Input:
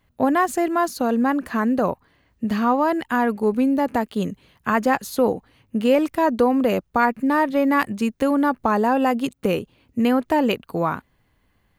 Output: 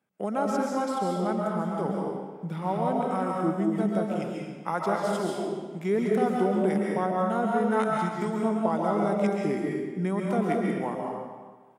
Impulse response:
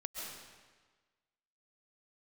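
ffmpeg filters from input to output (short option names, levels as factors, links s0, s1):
-filter_complex "[0:a]asetrate=34006,aresample=44100,atempo=1.29684,highpass=f=170:w=0.5412,highpass=f=170:w=1.3066,acrossover=split=600[s0][s1];[s0]aeval=exprs='val(0)*(1-0.5/2+0.5/2*cos(2*PI*2*n/s))':c=same[s2];[s1]aeval=exprs='val(0)*(1-0.5/2-0.5/2*cos(2*PI*2*n/s))':c=same[s3];[s2][s3]amix=inputs=2:normalize=0[s4];[1:a]atrim=start_sample=2205[s5];[s4][s5]afir=irnorm=-1:irlink=0,volume=0.708"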